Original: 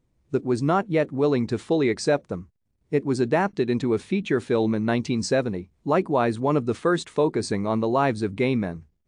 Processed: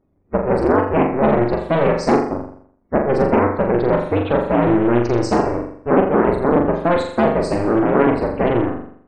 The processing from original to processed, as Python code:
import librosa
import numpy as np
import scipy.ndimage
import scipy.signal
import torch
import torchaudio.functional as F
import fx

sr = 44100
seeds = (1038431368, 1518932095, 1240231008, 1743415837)

p1 = fx.cycle_switch(x, sr, every=2, mode='inverted')
p2 = fx.peak_eq(p1, sr, hz=330.0, db=8.0, octaves=1.9)
p3 = fx.spec_topn(p2, sr, count=64)
p4 = p3 + fx.room_flutter(p3, sr, wall_m=7.2, rt60_s=0.61, dry=0)
y = fx.doppler_dist(p4, sr, depth_ms=0.2)